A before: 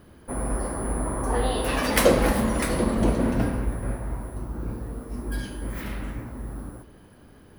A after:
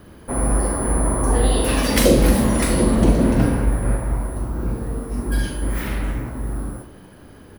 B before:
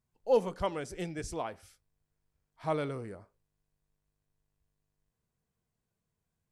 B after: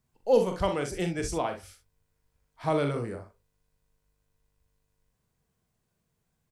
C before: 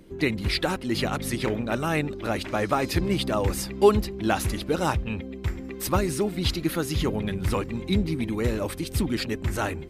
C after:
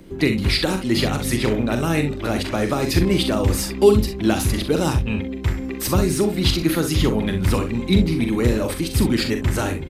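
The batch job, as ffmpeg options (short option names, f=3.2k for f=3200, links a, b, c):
-filter_complex "[0:a]aecho=1:1:42|64:0.422|0.266,acrossover=split=450|3000[a][b][c];[b]acompressor=threshold=-32dB:ratio=6[d];[a][d][c]amix=inputs=3:normalize=0,acrossover=split=5900[e][f];[f]asoftclip=type=tanh:threshold=-26.5dB[g];[e][g]amix=inputs=2:normalize=0,volume=6.5dB"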